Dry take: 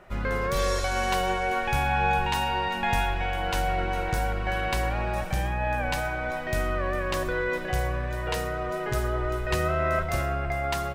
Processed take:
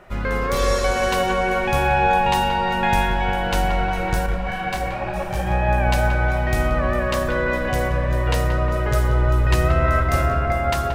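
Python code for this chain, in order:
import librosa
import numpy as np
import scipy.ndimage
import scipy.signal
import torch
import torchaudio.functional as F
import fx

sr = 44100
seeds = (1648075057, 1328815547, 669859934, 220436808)

y = fx.echo_filtered(x, sr, ms=179, feedback_pct=84, hz=1600.0, wet_db=-5.0)
y = fx.detune_double(y, sr, cents=33, at=(4.26, 5.47))
y = y * librosa.db_to_amplitude(4.5)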